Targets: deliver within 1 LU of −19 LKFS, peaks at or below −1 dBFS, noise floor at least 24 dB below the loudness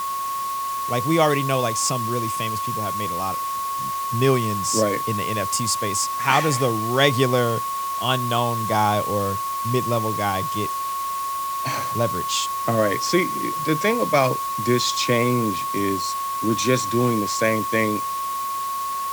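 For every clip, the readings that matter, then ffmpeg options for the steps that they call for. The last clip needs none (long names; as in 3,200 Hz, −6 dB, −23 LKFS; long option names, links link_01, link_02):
interfering tone 1,100 Hz; level of the tone −24 dBFS; background noise floor −27 dBFS; target noise floor −46 dBFS; integrated loudness −22.0 LKFS; sample peak −2.5 dBFS; target loudness −19.0 LKFS
→ -af "bandreject=frequency=1100:width=30"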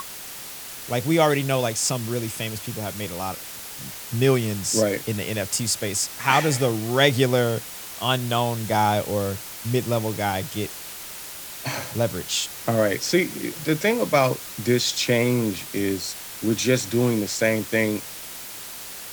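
interfering tone none found; background noise floor −37 dBFS; target noise floor −48 dBFS
→ -af "afftdn=noise_reduction=11:noise_floor=-37"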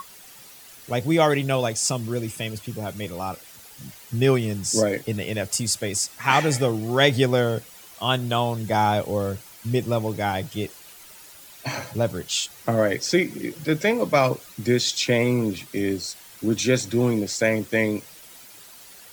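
background noise floor −46 dBFS; target noise floor −48 dBFS
→ -af "afftdn=noise_reduction=6:noise_floor=-46"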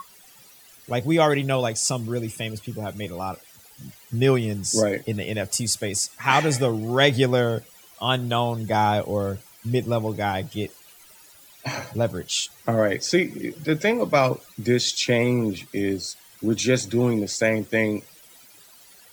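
background noise floor −51 dBFS; integrated loudness −23.5 LKFS; sample peak −3.0 dBFS; target loudness −19.0 LKFS
→ -af "volume=4.5dB,alimiter=limit=-1dB:level=0:latency=1"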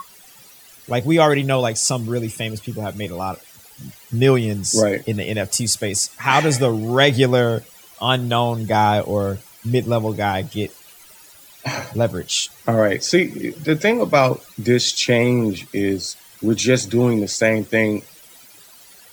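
integrated loudness −19.0 LKFS; sample peak −1.0 dBFS; background noise floor −46 dBFS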